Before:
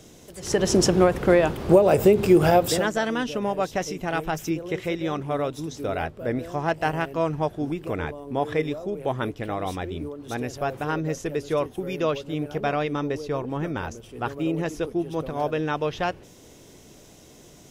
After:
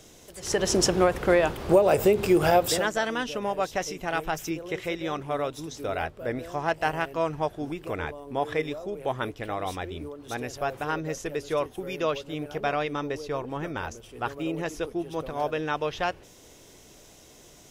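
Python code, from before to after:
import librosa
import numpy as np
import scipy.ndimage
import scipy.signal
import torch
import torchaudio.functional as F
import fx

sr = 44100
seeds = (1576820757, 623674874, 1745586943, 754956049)

y = fx.peak_eq(x, sr, hz=180.0, db=-7.0, octaves=2.5)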